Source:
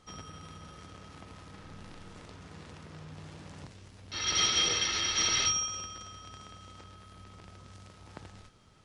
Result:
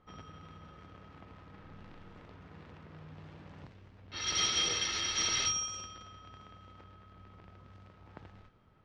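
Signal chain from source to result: low-pass opened by the level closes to 1800 Hz, open at -29.5 dBFS; gain -3.5 dB

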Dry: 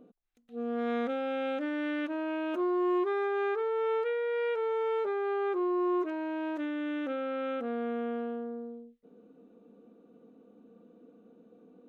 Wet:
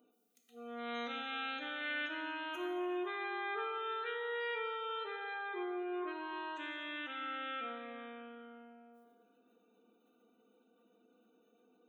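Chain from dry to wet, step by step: differentiator; notch comb 560 Hz; spectral gate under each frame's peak -25 dB strong; plate-style reverb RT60 2.1 s, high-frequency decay 0.75×, DRR 0.5 dB; gain +10.5 dB

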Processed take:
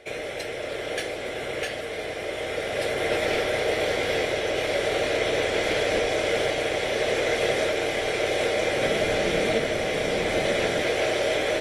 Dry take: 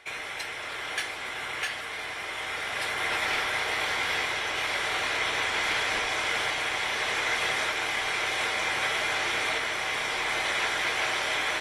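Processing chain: 8.8–10.84 octaver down 1 oct, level +1 dB; resonant low shelf 740 Hz +9.5 dB, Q 3

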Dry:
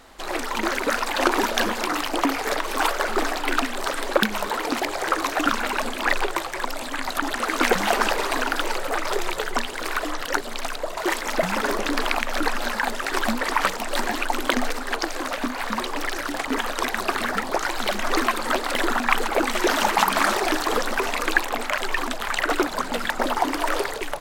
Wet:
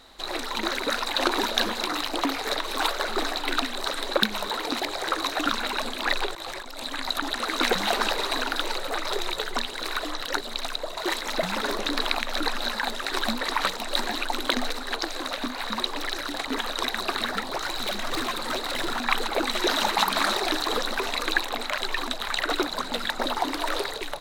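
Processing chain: bell 3900 Hz +14.5 dB 0.25 oct; 6.32–6.86 negative-ratio compressor -32 dBFS, ratio -1; 17.49–19.02 hard clip -19.5 dBFS, distortion -20 dB; gain -4.5 dB

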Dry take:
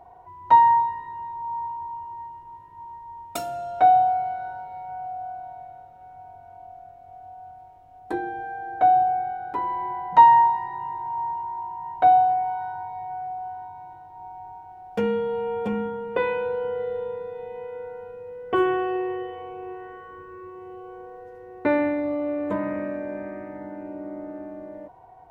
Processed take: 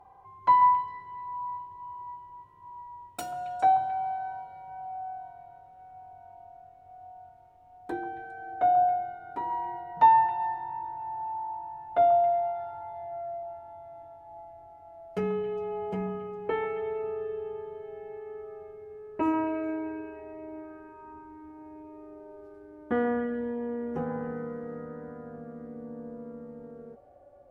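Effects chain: speed glide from 107% -> 77%; delay with a stepping band-pass 0.136 s, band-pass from 920 Hz, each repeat 1.4 oct, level -8 dB; gain -6 dB

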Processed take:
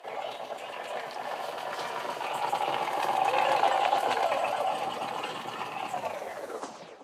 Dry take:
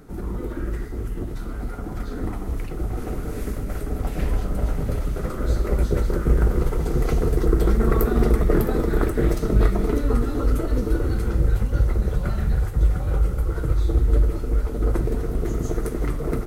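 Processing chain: tape stop at the end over 2.69 s; three-band isolator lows -24 dB, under 240 Hz, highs -14 dB, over 5800 Hz; downsampling 16000 Hz; formant shift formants -3 st; HPF 66 Hz 24 dB/oct; speed mistake 33 rpm record played at 78 rpm; bell 120 Hz -7.5 dB 0.91 oct; split-band echo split 930 Hz, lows 0.375 s, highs 0.123 s, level -11.5 dB

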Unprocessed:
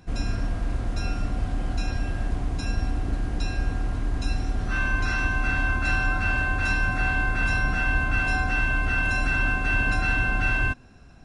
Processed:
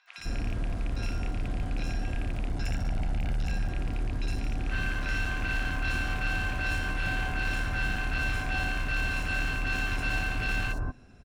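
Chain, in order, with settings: rattling part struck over -23 dBFS, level -24 dBFS; 2.47–3.51 comb 1.4 ms, depth 87%; hard clip -23 dBFS, distortion -9 dB; three bands offset in time mids, highs, lows 60/180 ms, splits 1100/5300 Hz; gain -2.5 dB

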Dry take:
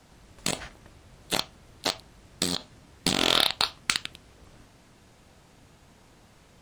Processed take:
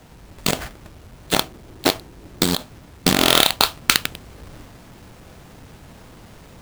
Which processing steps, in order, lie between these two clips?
half-waves squared off; 1.41–2.43 bell 340 Hz +7.5 dB 0.86 oct; in parallel at +0.5 dB: vocal rider 0.5 s

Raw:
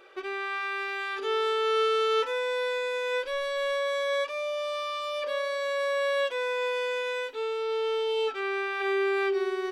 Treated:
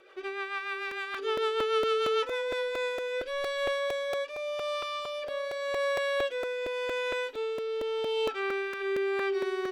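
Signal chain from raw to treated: rotary speaker horn 6.7 Hz, later 0.85 Hz, at 2.18; crackling interface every 0.23 s, samples 128, repeat, from 0.91

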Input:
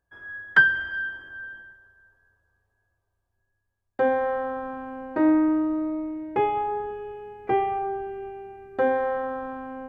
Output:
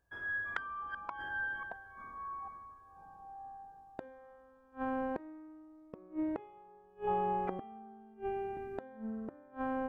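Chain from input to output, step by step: 7.07–8.14 small resonant body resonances 860/1300/3200 Hz, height 12 dB, ringing for 25 ms; flipped gate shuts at -25 dBFS, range -32 dB; echoes that change speed 0.293 s, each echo -6 st, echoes 2, each echo -6 dB; gain +1 dB

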